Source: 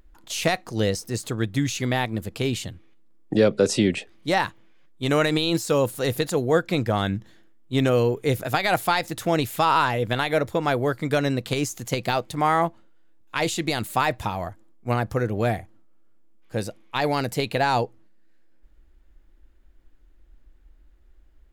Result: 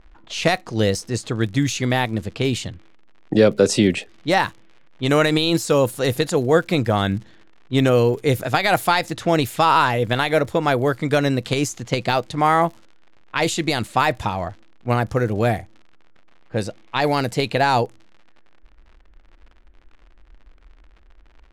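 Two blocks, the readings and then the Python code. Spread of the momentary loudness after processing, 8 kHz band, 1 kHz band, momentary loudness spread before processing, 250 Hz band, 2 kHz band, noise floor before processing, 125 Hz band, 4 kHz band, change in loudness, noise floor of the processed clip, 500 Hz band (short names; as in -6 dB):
10 LU, +3.0 dB, +4.0 dB, 10 LU, +4.0 dB, +4.0 dB, -54 dBFS, +4.0 dB, +4.0 dB, +4.0 dB, -50 dBFS, +4.0 dB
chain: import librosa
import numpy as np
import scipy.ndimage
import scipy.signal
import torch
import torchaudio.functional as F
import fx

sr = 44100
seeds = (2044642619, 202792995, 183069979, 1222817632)

y = fx.dmg_crackle(x, sr, seeds[0], per_s=87.0, level_db=-38.0)
y = fx.env_lowpass(y, sr, base_hz=2200.0, full_db=-19.5)
y = y * 10.0 ** (4.0 / 20.0)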